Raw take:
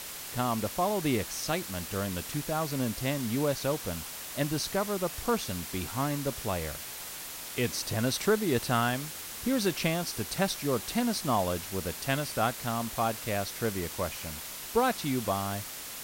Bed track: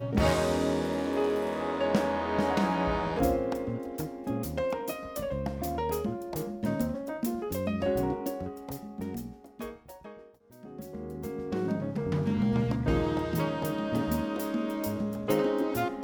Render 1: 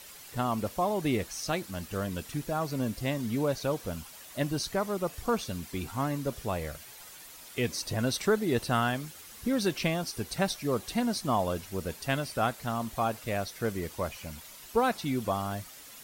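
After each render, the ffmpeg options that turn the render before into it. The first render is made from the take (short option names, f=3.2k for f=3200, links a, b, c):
-af "afftdn=nr=10:nf=-41"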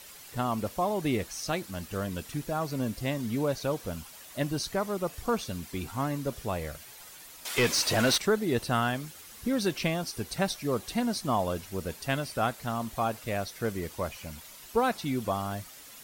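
-filter_complex "[0:a]asettb=1/sr,asplit=3[a][b][c];[a]atrim=end=7.454[d];[b]atrim=start=7.45:end=8.18,asetpts=PTS-STARTPTS,afade=t=in:d=0.004:c=qsin,afade=t=out:st=0.726:d=0.004:c=qsin,asplit=2[e][f];[f]highpass=f=720:p=1,volume=22dB,asoftclip=type=tanh:threshold=-15.5dB[g];[e][g]amix=inputs=2:normalize=0,lowpass=f=6.2k:p=1,volume=-6dB[h];[c]atrim=start=8.176[i];[d][h]acrossfade=d=0.004:c1=hsin:c2=qsin[j];[j][i]acrossfade=d=0.004:c1=qsin:c2=hsin"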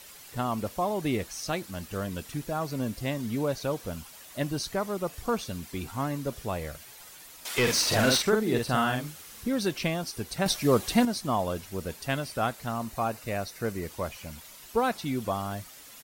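-filter_complex "[0:a]asplit=3[a][b][c];[a]afade=t=out:st=7.66:d=0.02[d];[b]asplit=2[e][f];[f]adelay=47,volume=-3.5dB[g];[e][g]amix=inputs=2:normalize=0,afade=t=in:st=7.66:d=0.02,afade=t=out:st=9.43:d=0.02[h];[c]afade=t=in:st=9.43:d=0.02[i];[d][h][i]amix=inputs=3:normalize=0,asettb=1/sr,asplit=3[j][k][l];[j]atrim=end=12.684[m];[k]atrim=start=12.68:end=13.88,asetpts=PTS-STARTPTS,afade=t=in:d=0.004:c=qsin,afade=t=out:st=1.196:d=0.004:c=qsin,bandreject=f=3.3k:w=7.6[n];[l]atrim=start=13.876[o];[m][n]acrossfade=d=0.004:c1=hsin:c2=qsin[p];[p][o]acrossfade=d=0.004:c1=qsin:c2=hsin,asplit=3[q][r][s];[q]atrim=end=10.462[t];[r]atrim=start=10.458:end=11.052,asetpts=PTS-STARTPTS,volume=7dB[u];[s]atrim=start=11.048[v];[t][u]acrossfade=d=0.004:c1=hsin:c2=hsin[w];[w][v]acrossfade=d=0.004:c1=hsin:c2=hsin"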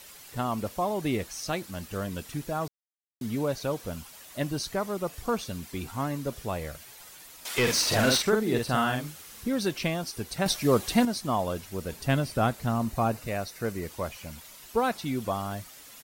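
-filter_complex "[0:a]asettb=1/sr,asplit=3[a][b][c];[a]atrim=end=11.924[d];[b]atrim=start=11.92:end=13.27,asetpts=PTS-STARTPTS,afade=t=in:d=0.004:c=qsin,afade=t=out:st=1.346:d=0.004:c=qsin,lowshelf=f=410:g=8.5[e];[c]atrim=start=13.266[f];[d][e]acrossfade=d=0.004:c1=hsin:c2=qsin[g];[g][f]acrossfade=d=0.004:c1=qsin:c2=hsin,asplit=3[h][i][j];[h]atrim=end=2.68,asetpts=PTS-STARTPTS,afade=t=out:st=2.676:d=0.004:c=hsin[k];[i]atrim=start=2.68:end=3.21,asetpts=PTS-STARTPTS,volume=0[l];[j]atrim=start=3.21,asetpts=PTS-STARTPTS,afade=t=in:d=0.004:c=hsin[m];[k][l][m]concat=n=3:v=0:a=1"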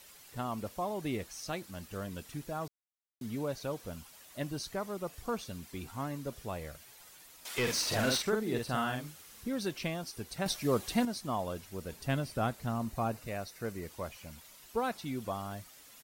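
-af "volume=-7dB"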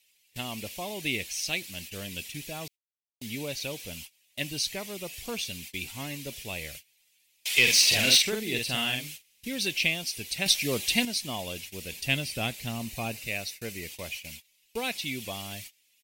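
-af "agate=range=-24dB:threshold=-49dB:ratio=16:detection=peak,highshelf=f=1.8k:t=q:w=3:g=11"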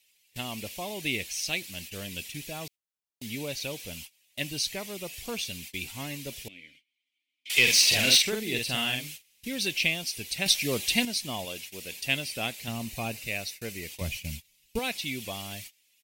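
-filter_complex "[0:a]asettb=1/sr,asplit=3[a][b][c];[a]atrim=end=6.484[d];[b]atrim=start=6.48:end=7.5,asetpts=PTS-STARTPTS,afade=t=in:d=0.004:c=qsin,afade=t=out:st=1.016:d=0.004:c=qsin,asplit=3[e][f][g];[e]bandpass=f=270:t=q:w=8,volume=0dB[h];[f]bandpass=f=2.29k:t=q:w=8,volume=-6dB[i];[g]bandpass=f=3.01k:t=q:w=8,volume=-9dB[j];[h][i][j]amix=inputs=3:normalize=0[k];[c]atrim=start=7.496[l];[d][k]acrossfade=d=0.004:c1=hsin:c2=qsin[m];[m][l]acrossfade=d=0.004:c1=qsin:c2=hsin,asettb=1/sr,asplit=3[n][o][p];[n]atrim=end=11.454[q];[o]atrim=start=11.45:end=12.68,asetpts=PTS-STARTPTS,afade=t=in:d=0.004:c=qsin,afade=t=out:st=1.226:d=0.004:c=qsin,lowshelf=f=150:g=-11.5[r];[p]atrim=start=12.676[s];[q][r]acrossfade=d=0.004:c1=hsin:c2=qsin[t];[t][s]acrossfade=d=0.004:c1=qsin:c2=hsin,asettb=1/sr,asplit=3[u][v][w];[u]atrim=end=14.014[x];[v]atrim=start=14.01:end=14.79,asetpts=PTS-STARTPTS,afade=t=in:d=0.004:c=qsin,afade=t=out:st=0.776:d=0.004:c=qsin,bass=f=250:g=15,treble=f=4k:g=2[y];[w]atrim=start=14.786[z];[x][y]acrossfade=d=0.004:c1=hsin:c2=qsin[aa];[aa][z]acrossfade=d=0.004:c1=qsin:c2=hsin"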